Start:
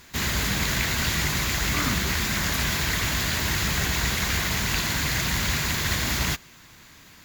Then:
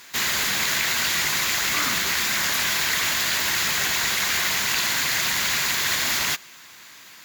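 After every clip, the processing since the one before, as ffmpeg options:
ffmpeg -i in.wav -filter_complex "[0:a]highpass=frequency=900:poles=1,asplit=2[link_01][link_02];[link_02]alimiter=limit=-21dB:level=0:latency=1,volume=0dB[link_03];[link_01][link_03]amix=inputs=2:normalize=0" out.wav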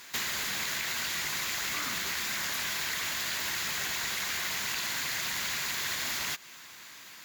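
ffmpeg -i in.wav -af "acompressor=threshold=-27dB:ratio=6,volume=-3dB" out.wav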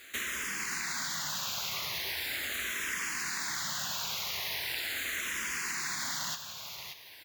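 ffmpeg -i in.wav -filter_complex "[0:a]aecho=1:1:577:0.398,asplit=2[link_01][link_02];[link_02]afreqshift=-0.4[link_03];[link_01][link_03]amix=inputs=2:normalize=1" out.wav

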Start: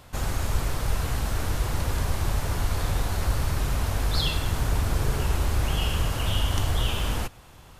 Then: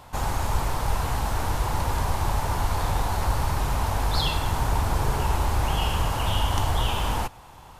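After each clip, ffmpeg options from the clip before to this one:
ffmpeg -i in.wav -af "equalizer=frequency=890:width=2.2:gain=11" out.wav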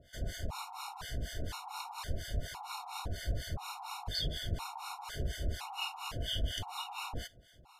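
ffmpeg -i in.wav -filter_complex "[0:a]acrossover=split=850[link_01][link_02];[link_01]aeval=exprs='val(0)*(1-1/2+1/2*cos(2*PI*4.2*n/s))':channel_layout=same[link_03];[link_02]aeval=exprs='val(0)*(1-1/2-1/2*cos(2*PI*4.2*n/s))':channel_layout=same[link_04];[link_03][link_04]amix=inputs=2:normalize=0,equalizer=frequency=3800:width_type=o:width=1.4:gain=8.5,afftfilt=real='re*gt(sin(2*PI*0.98*pts/sr)*(1-2*mod(floor(b*sr/1024/730),2)),0)':imag='im*gt(sin(2*PI*0.98*pts/sr)*(1-2*mod(floor(b*sr/1024/730),2)),0)':win_size=1024:overlap=0.75,volume=-7.5dB" out.wav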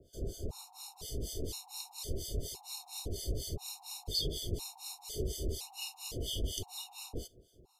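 ffmpeg -i in.wav -filter_complex "[0:a]acrossover=split=200|3900[link_01][link_02][link_03];[link_02]lowpass=frequency=400:width_type=q:width=4.4[link_04];[link_03]dynaudnorm=framelen=100:gausssize=17:maxgain=9dB[link_05];[link_01][link_04][link_05]amix=inputs=3:normalize=0,volume=-1.5dB" out.wav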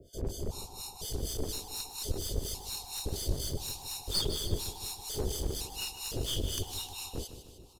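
ffmpeg -i in.wav -af "aeval=exprs='clip(val(0),-1,0.00891)':channel_layout=same,aecho=1:1:154|308|462|616|770|924:0.266|0.146|0.0805|0.0443|0.0243|0.0134,volume=5.5dB" out.wav

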